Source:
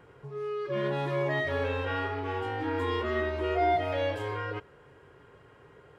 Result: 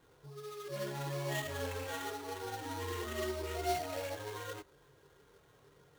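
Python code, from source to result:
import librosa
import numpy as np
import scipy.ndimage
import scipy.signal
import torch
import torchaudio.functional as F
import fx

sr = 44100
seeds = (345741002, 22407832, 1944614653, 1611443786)

y = fx.chorus_voices(x, sr, voices=6, hz=0.63, base_ms=24, depth_ms=3.9, mix_pct=55)
y = fx.sample_hold(y, sr, seeds[0], rate_hz=5000.0, jitter_pct=20)
y = y * librosa.db_to_amplitude(-5.5)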